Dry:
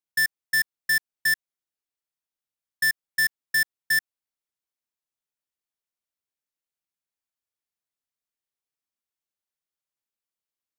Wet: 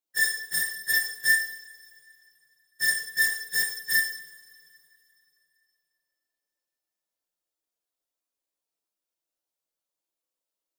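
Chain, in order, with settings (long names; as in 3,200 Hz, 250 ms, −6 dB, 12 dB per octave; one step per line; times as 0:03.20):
random phases in long frames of 50 ms
octave-band graphic EQ 125/500/2,000 Hz −11/+6/−6 dB
convolution reverb, pre-delay 3 ms, DRR 0.5 dB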